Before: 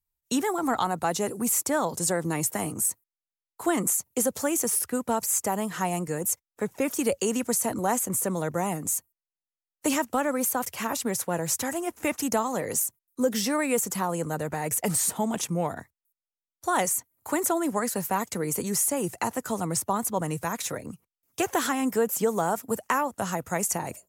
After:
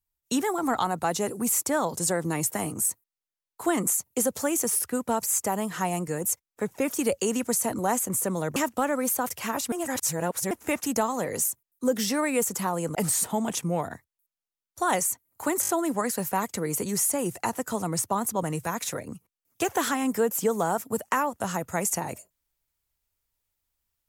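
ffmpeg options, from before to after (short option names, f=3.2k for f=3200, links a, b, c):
-filter_complex "[0:a]asplit=9[a][b][c][d][e][f][g][h][i];[a]atrim=end=8.562[j];[b]atrim=start=9.918:end=11.082[k];[c]atrim=start=11.078:end=11.872,asetpts=PTS-STARTPTS,areverse[l];[d]atrim=start=11.868:end=14.312[m];[e]atrim=start=14.808:end=17.492[n];[f]atrim=start=17.468:end=17.492[o];[g]atrim=start=17.468:end=17.492[p];[h]atrim=start=17.468:end=17.492[q];[i]atrim=start=17.468[r];[j][k]acrossfade=d=0.004:c1=hsin:c2=hsin[s];[s][l]acrossfade=d=0.004:c1=hsin:c2=hsin[t];[t][m]acrossfade=d=0.004:c1=hsin:c2=hsin[u];[u][n]acrossfade=d=0.004:c1=hsin:c2=hsin[v];[v][o]acrossfade=d=0.004:c1=hsin:c2=hsin[w];[w][p]acrossfade=d=0.004:c1=hsin:c2=hsin[x];[x][q]acrossfade=d=0.004:c1=hsin:c2=hsin[y];[y][r]acrossfade=d=0.004:c1=hsin:c2=hsin"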